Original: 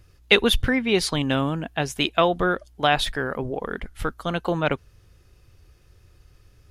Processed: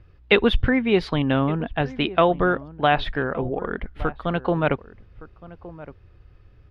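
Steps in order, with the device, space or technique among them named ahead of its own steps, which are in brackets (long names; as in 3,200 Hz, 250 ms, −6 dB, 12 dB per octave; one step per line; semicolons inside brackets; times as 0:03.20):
shout across a valley (high-frequency loss of the air 360 metres; slap from a distant wall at 200 metres, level −17 dB)
0:01.68–0:03.05: low-pass filter 5,800 Hz 24 dB per octave
level +3 dB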